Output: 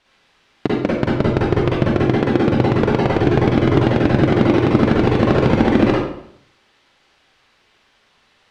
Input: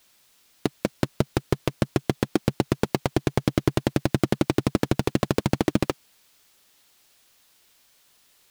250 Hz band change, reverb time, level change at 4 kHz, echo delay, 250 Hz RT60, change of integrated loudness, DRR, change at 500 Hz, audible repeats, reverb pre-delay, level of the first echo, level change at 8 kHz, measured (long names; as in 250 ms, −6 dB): +10.0 dB, 0.70 s, +4.5 dB, no echo audible, 0.75 s, +10.0 dB, −5.5 dB, +10.5 dB, no echo audible, 39 ms, no echo audible, can't be measured